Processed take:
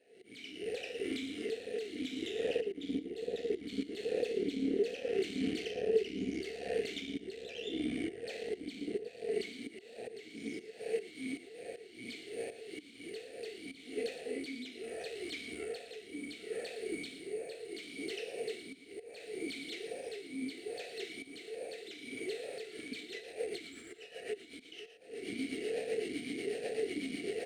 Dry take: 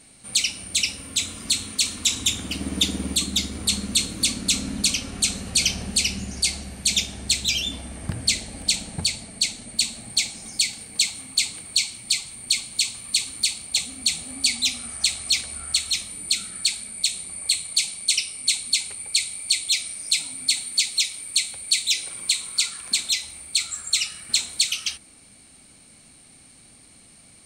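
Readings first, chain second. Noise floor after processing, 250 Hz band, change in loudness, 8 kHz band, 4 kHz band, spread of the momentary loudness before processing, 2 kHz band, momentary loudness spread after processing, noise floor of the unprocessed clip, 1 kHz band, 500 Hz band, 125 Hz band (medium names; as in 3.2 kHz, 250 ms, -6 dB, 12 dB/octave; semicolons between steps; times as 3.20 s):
-55 dBFS, -3.5 dB, -17.0 dB, -31.5 dB, -25.0 dB, 4 LU, -14.5 dB, 12 LU, -51 dBFS, -8.5 dB, +10.5 dB, -18.5 dB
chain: recorder AGC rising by 72 dB/s; harmonic-percussive split percussive -9 dB; slow attack 244 ms; rotary cabinet horn 0.7 Hz, later 8 Hz, at 22.32 s; half-wave rectifier; small resonant body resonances 440/700 Hz, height 15 dB, ringing for 45 ms; on a send: delay 114 ms -12 dB; on the sum: talking filter e-i 1.2 Hz; trim +4.5 dB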